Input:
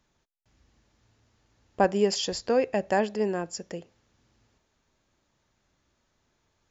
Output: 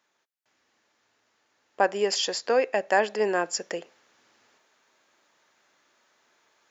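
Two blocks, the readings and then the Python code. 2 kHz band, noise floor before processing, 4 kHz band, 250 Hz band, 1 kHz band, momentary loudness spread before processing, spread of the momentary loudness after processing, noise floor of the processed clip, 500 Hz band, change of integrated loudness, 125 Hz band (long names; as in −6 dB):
+6.5 dB, −74 dBFS, +3.5 dB, −6.0 dB, +2.5 dB, 13 LU, 8 LU, −74 dBFS, +1.0 dB, +1.0 dB, can't be measured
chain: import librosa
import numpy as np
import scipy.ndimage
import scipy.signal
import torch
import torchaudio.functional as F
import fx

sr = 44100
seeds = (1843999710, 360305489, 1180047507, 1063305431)

y = scipy.signal.sosfilt(scipy.signal.butter(2, 410.0, 'highpass', fs=sr, output='sos'), x)
y = fx.peak_eq(y, sr, hz=1700.0, db=4.5, octaves=1.4)
y = fx.rider(y, sr, range_db=10, speed_s=0.5)
y = F.gain(torch.from_numpy(y), 3.0).numpy()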